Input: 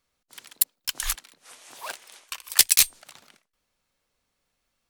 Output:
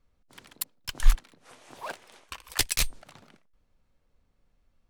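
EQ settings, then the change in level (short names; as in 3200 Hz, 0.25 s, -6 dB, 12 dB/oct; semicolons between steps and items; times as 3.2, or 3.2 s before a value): tilt -3.5 dB/oct; 0.0 dB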